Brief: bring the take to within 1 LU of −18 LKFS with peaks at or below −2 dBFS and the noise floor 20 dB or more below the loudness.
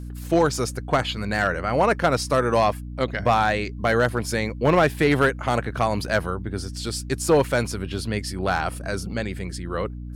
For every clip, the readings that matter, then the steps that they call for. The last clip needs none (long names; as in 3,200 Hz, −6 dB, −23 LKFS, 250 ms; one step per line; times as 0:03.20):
share of clipped samples 0.5%; peaks flattened at −11.0 dBFS; mains hum 60 Hz; hum harmonics up to 300 Hz; level of the hum −31 dBFS; integrated loudness −23.0 LKFS; sample peak −11.0 dBFS; target loudness −18.0 LKFS
→ clipped peaks rebuilt −11 dBFS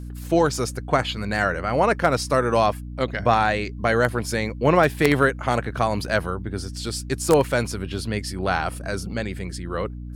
share of clipped samples 0.0%; mains hum 60 Hz; hum harmonics up to 300 Hz; level of the hum −31 dBFS
→ mains-hum notches 60/120/180/240/300 Hz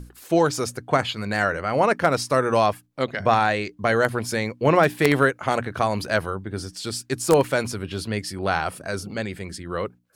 mains hum none found; integrated loudness −23.0 LKFS; sample peak −2.0 dBFS; target loudness −18.0 LKFS
→ level +5 dB
brickwall limiter −2 dBFS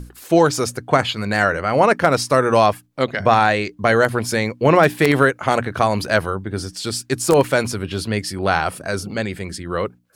integrated loudness −18.5 LKFS; sample peak −2.0 dBFS; background noise floor −50 dBFS